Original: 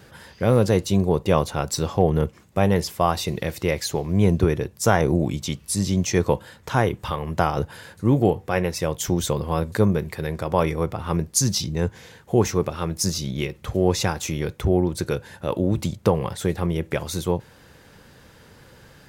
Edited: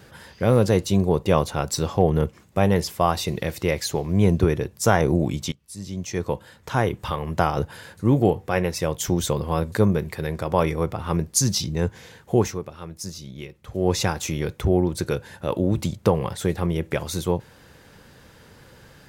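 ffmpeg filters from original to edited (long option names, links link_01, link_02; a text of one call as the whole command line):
ffmpeg -i in.wav -filter_complex "[0:a]asplit=4[link_01][link_02][link_03][link_04];[link_01]atrim=end=5.52,asetpts=PTS-STARTPTS,afade=type=out:start_time=5.516:duration=0.004:curve=hsin:silence=0.0707946[link_05];[link_02]atrim=start=5.52:end=12.61,asetpts=PTS-STARTPTS,afade=type=in:duration=1.55:silence=0.0707946,afade=type=out:start_time=6.84:duration=0.25:silence=0.298538[link_06];[link_03]atrim=start=12.61:end=13.68,asetpts=PTS-STARTPTS,volume=-10.5dB[link_07];[link_04]atrim=start=13.68,asetpts=PTS-STARTPTS,afade=type=in:duration=0.25:silence=0.298538[link_08];[link_05][link_06][link_07][link_08]concat=n=4:v=0:a=1" out.wav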